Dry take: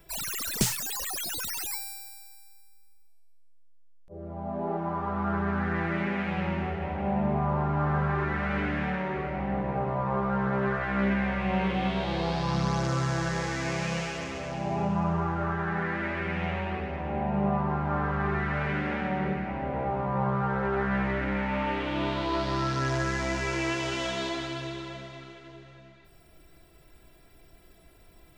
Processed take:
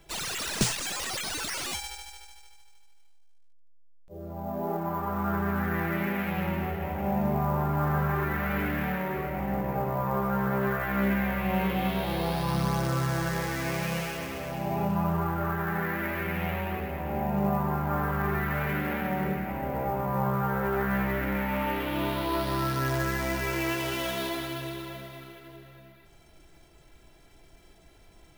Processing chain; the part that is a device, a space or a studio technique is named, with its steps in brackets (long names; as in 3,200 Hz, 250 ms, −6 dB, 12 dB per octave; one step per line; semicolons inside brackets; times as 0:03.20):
early companding sampler (sample-rate reduction 15,000 Hz, jitter 0%; log-companded quantiser 8 bits)